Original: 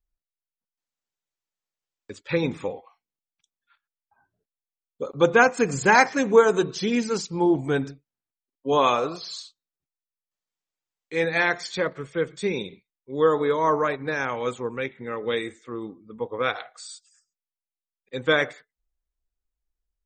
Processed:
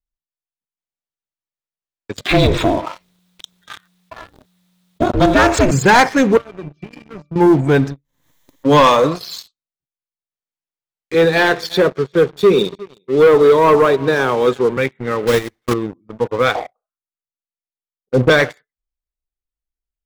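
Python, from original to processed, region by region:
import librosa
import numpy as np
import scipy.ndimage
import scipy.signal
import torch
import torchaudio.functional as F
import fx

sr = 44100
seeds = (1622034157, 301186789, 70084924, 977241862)

y = fx.chain(x, sr, fx.peak_eq(hz=3700.0, db=9.0, octaves=0.3),
    fx.ring_mod(carrier_hz=180.0),
    fx.env_flatten(amount_pct=50), at=(2.18, 5.71))
y = fx.chain(y, sr, fx.octave_resonator(note='D', decay_s=0.22),
    fx.band_squash(depth_pct=100), at=(6.37, 7.36))
y = fx.chain(y, sr, fx.ripple_eq(per_octave=1.1, db=9),
    fx.pre_swell(db_per_s=75.0), at=(7.9, 9.15))
y = fx.chain(y, sr, fx.cabinet(low_hz=130.0, low_slope=24, high_hz=6300.0, hz=(400.0, 2100.0, 3800.0), db=(9, -8, 6)),
    fx.echo_single(ms=356, db=-22.5), at=(11.14, 14.77))
y = fx.chain(y, sr, fx.block_float(bits=3),
    fx.transient(attack_db=11, sustain_db=-10),
    fx.running_max(window=5), at=(15.27, 15.74))
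y = fx.chain(y, sr, fx.steep_lowpass(hz=900.0, slope=36),
    fx.leveller(passes=2),
    fx.doubler(ms=32.0, db=-13), at=(16.55, 18.3))
y = fx.high_shelf(y, sr, hz=4400.0, db=-5.5)
y = fx.leveller(y, sr, passes=3)
y = fx.peak_eq(y, sr, hz=120.0, db=4.5, octaves=1.1)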